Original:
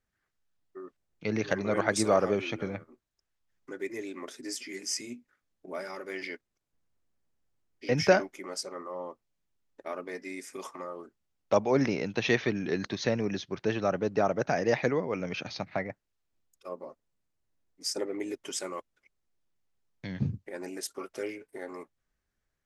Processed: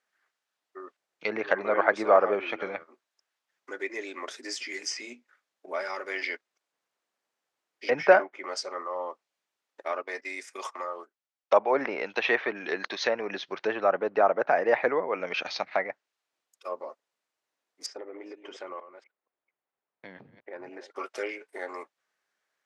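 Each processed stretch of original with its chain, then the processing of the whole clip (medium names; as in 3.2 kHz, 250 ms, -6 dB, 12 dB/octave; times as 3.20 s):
10.02–13.29 s: gate -46 dBFS, range -13 dB + bass shelf 270 Hz -6 dB
17.86–20.96 s: chunks repeated in reverse 236 ms, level -14 dB + tape spacing loss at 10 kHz 39 dB + compression 10:1, threshold -37 dBFS
whole clip: low-pass that closes with the level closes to 1.8 kHz, closed at -26 dBFS; high-pass 600 Hz 12 dB/octave; treble shelf 8.4 kHz -11 dB; trim +8 dB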